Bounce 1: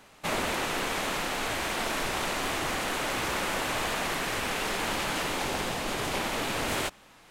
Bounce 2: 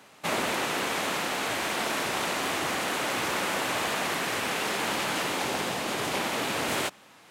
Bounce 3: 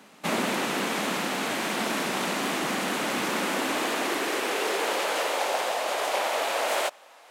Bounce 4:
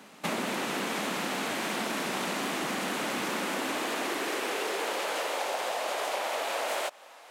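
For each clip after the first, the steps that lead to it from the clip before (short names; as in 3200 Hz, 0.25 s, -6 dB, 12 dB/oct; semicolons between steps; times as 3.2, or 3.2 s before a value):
HPF 130 Hz 12 dB/oct; gain +1.5 dB
high-pass sweep 200 Hz -> 600 Hz, 3.15–5.55
compressor 4:1, threshold -30 dBFS, peak gain reduction 7 dB; gain +1 dB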